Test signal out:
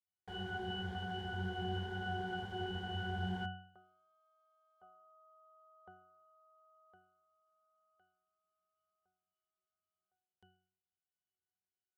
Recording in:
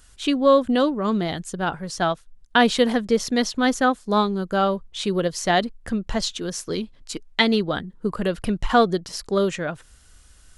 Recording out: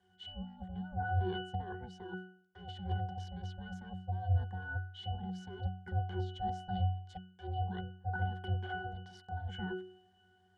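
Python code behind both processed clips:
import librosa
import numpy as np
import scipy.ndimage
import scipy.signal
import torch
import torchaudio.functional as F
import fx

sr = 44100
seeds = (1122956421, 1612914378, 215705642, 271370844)

y = np.minimum(x, 2.0 * 10.0 ** (-14.0 / 20.0) - x)
y = scipy.signal.sosfilt(scipy.signal.butter(2, 280.0, 'highpass', fs=sr, output='sos'), y)
y = fx.over_compress(y, sr, threshold_db=-30.0, ratio=-1.0)
y = y * np.sin(2.0 * np.pi * 310.0 * np.arange(len(y)) / sr)
y = fx.octave_resonator(y, sr, note='F#', decay_s=0.54)
y = F.gain(torch.from_numpy(y), 12.0).numpy()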